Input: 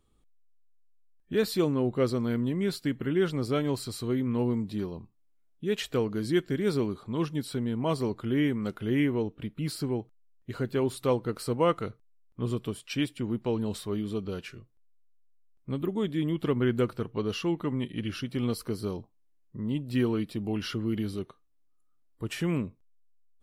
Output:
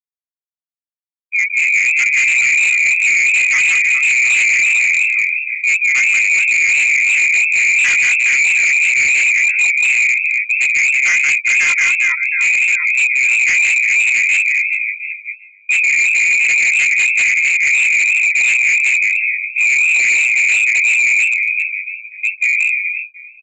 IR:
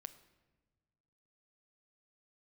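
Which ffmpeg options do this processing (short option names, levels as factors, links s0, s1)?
-filter_complex "[0:a]afwtdn=0.0282,acrossover=split=97|310|740[s0][s1][s2][s3];[s0]acompressor=threshold=0.00562:ratio=4[s4];[s1]acompressor=threshold=0.0224:ratio=4[s5];[s2]acompressor=threshold=0.02:ratio=4[s6];[s3]acompressor=threshold=0.00398:ratio=4[s7];[s4][s5][s6][s7]amix=inputs=4:normalize=0,lowpass=f=2200:t=q:w=0.5098,lowpass=f=2200:t=q:w=0.6013,lowpass=f=2200:t=q:w=0.9,lowpass=f=2200:t=q:w=2.563,afreqshift=-2600,dynaudnorm=f=310:g=11:m=3.16,afftfilt=real='re*gte(hypot(re,im),0.0708)':imag='im*gte(hypot(re,im),0.0708)':win_size=1024:overlap=0.75,aecho=1:1:2:0.47,aecho=1:1:180|414|718.2|1114|1628:0.631|0.398|0.251|0.158|0.1,adynamicequalizer=threshold=0.00631:dfrequency=960:dqfactor=2.3:tfrequency=960:tqfactor=2.3:attack=5:release=100:ratio=0.375:range=2:mode=boostabove:tftype=bell,flanger=delay=16:depth=8:speed=2.9,agate=range=0.0224:threshold=0.0282:ratio=3:detection=peak,aresample=16000,asoftclip=type=hard:threshold=0.0668,aresample=44100,alimiter=level_in=16.8:limit=0.891:release=50:level=0:latency=1,volume=0.422"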